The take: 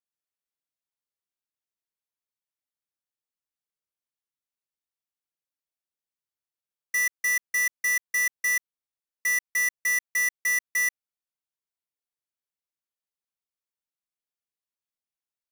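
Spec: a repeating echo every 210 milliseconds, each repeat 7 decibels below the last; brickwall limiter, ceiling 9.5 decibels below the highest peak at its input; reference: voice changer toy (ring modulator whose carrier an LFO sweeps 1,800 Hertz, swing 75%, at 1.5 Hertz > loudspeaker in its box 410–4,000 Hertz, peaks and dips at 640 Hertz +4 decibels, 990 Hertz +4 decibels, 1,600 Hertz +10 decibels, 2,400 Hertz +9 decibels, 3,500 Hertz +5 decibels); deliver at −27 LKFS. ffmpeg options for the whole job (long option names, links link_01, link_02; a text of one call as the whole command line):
ffmpeg -i in.wav -af "alimiter=level_in=9dB:limit=-24dB:level=0:latency=1,volume=-9dB,aecho=1:1:210|420|630|840|1050:0.447|0.201|0.0905|0.0407|0.0183,aeval=exprs='val(0)*sin(2*PI*1800*n/s+1800*0.75/1.5*sin(2*PI*1.5*n/s))':channel_layout=same,highpass=410,equalizer=frequency=640:width_type=q:width=4:gain=4,equalizer=frequency=990:width_type=q:width=4:gain=4,equalizer=frequency=1600:width_type=q:width=4:gain=10,equalizer=frequency=2400:width_type=q:width=4:gain=9,equalizer=frequency=3500:width_type=q:width=4:gain=5,lowpass=frequency=4000:width=0.5412,lowpass=frequency=4000:width=1.3066,volume=7dB" out.wav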